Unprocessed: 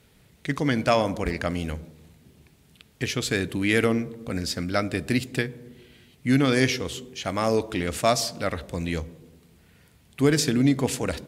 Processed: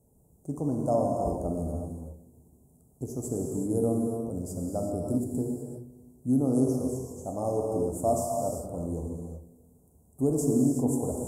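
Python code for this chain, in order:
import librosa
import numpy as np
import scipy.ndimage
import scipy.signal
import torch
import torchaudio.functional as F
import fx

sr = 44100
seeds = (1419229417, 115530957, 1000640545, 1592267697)

y = scipy.signal.sosfilt(scipy.signal.ellip(3, 1.0, 50, [800.0, 7700.0], 'bandstop', fs=sr, output='sos'), x)
y = fx.rev_gated(y, sr, seeds[0], gate_ms=410, shape='flat', drr_db=-0.5)
y = fx.end_taper(y, sr, db_per_s=400.0)
y = y * 10.0 ** (-5.5 / 20.0)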